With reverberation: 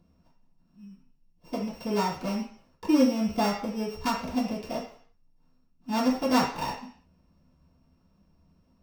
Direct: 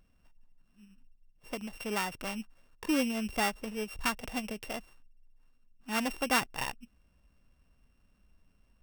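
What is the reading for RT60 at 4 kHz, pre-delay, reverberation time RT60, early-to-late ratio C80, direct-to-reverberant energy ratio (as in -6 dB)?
0.55 s, 3 ms, 0.50 s, 10.0 dB, -10.5 dB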